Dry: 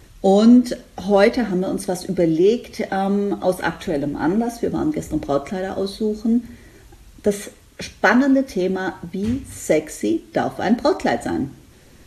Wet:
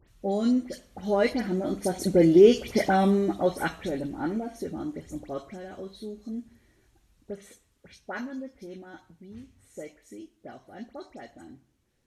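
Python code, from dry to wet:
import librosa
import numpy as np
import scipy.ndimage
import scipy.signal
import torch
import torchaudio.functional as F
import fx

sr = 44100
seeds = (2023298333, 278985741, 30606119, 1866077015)

y = fx.doppler_pass(x, sr, speed_mps=6, closest_m=2.7, pass_at_s=2.6)
y = fx.dispersion(y, sr, late='highs', ms=81.0, hz=2600.0)
y = y * 10.0 ** (1.0 / 20.0)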